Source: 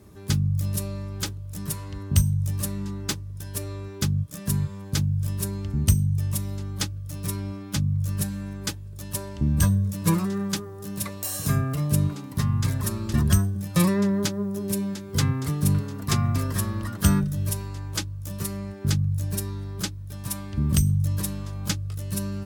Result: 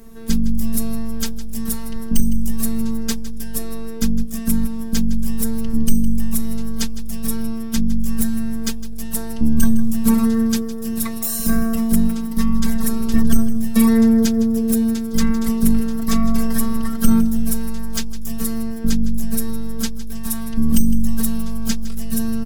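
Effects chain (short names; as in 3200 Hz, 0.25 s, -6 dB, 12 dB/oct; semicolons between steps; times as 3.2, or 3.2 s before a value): bell 14000 Hz +5.5 dB 0.73 oct; robotiser 226 Hz; low shelf 110 Hz +11 dB; soft clip -10 dBFS, distortion -17 dB; feedback echo 0.159 s, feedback 54%, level -15.5 dB; gain +7.5 dB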